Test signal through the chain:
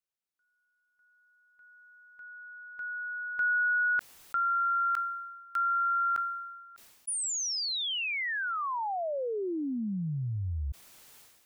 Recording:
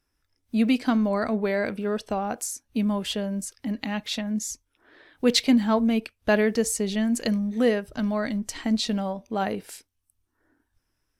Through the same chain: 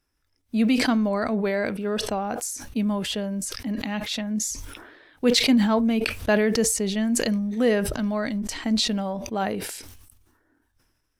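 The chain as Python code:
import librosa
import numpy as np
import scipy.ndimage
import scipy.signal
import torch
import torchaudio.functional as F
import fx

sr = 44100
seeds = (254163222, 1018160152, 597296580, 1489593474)

y = fx.sustainer(x, sr, db_per_s=45.0)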